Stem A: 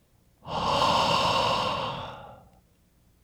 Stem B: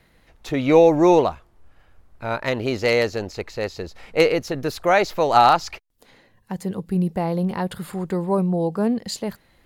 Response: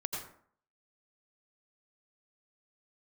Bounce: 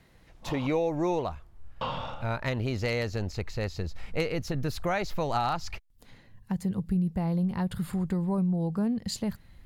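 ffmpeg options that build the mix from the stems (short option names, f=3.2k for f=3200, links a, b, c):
-filter_complex "[0:a]acrossover=split=2800[a][b];[b]acompressor=threshold=-44dB:ratio=4:attack=1:release=60[c];[a][c]amix=inputs=2:normalize=0,lowpass=6.5k,volume=1dB,asplit=3[d][e][f];[d]atrim=end=0.67,asetpts=PTS-STARTPTS,afade=t=out:st=0.666:d=0.004:c=hsin[g];[e]atrim=start=0.67:end=1.81,asetpts=PTS-STARTPTS,volume=0[h];[f]atrim=start=1.81,asetpts=PTS-STARTPTS,afade=t=in:d=0.004:c=hsin[i];[g][h][i]concat=n=3:v=0:a=1[j];[1:a]asubboost=boost=5:cutoff=180,volume=-4dB,asplit=2[k][l];[l]apad=whole_len=142850[m];[j][m]sidechaincompress=threshold=-37dB:ratio=8:attack=50:release=314[n];[n][k]amix=inputs=2:normalize=0,acompressor=threshold=-27dB:ratio=3"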